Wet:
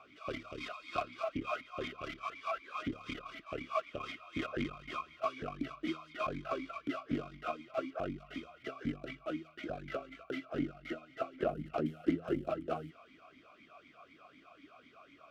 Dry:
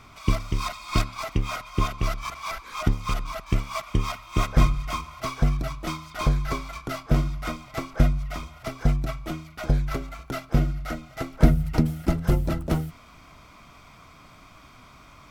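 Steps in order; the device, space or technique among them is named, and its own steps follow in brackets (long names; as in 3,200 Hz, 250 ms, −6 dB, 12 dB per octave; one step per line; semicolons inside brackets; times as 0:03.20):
talk box (tube saturation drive 20 dB, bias 0.6; formant filter swept between two vowels a-i 4 Hz)
level +7.5 dB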